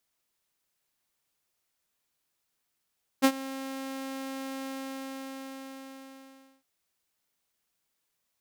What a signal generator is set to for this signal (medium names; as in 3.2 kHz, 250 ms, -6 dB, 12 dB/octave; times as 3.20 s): ADSR saw 268 Hz, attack 27 ms, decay 65 ms, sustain -19 dB, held 1.43 s, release 1980 ms -13.5 dBFS